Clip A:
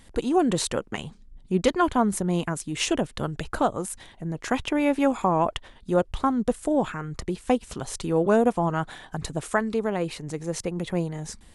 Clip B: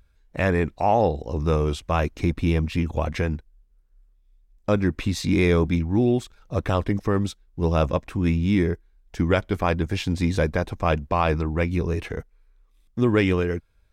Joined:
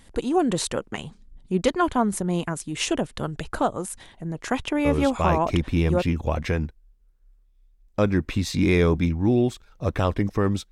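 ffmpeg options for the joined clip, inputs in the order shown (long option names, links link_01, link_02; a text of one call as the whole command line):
ffmpeg -i cue0.wav -i cue1.wav -filter_complex "[0:a]apad=whole_dur=10.71,atrim=end=10.71,atrim=end=6.09,asetpts=PTS-STARTPTS[link_01];[1:a]atrim=start=1.55:end=7.41,asetpts=PTS-STARTPTS[link_02];[link_01][link_02]acrossfade=duration=1.24:curve1=log:curve2=log" out.wav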